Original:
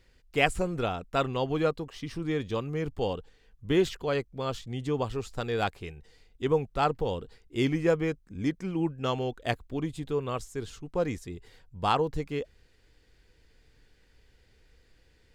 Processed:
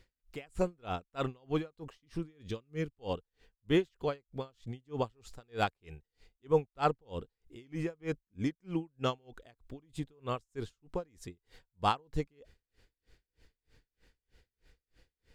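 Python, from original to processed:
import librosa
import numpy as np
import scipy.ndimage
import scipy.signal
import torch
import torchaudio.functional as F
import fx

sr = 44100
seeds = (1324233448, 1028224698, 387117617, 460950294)

y = fx.peak_eq(x, sr, hz=840.0, db=fx.line((2.16, -3.5), (2.97, -11.0)), octaves=0.95, at=(2.16, 2.97), fade=0.02)
y = y * 10.0 ** (-36 * (0.5 - 0.5 * np.cos(2.0 * np.pi * 3.2 * np.arange(len(y)) / sr)) / 20.0)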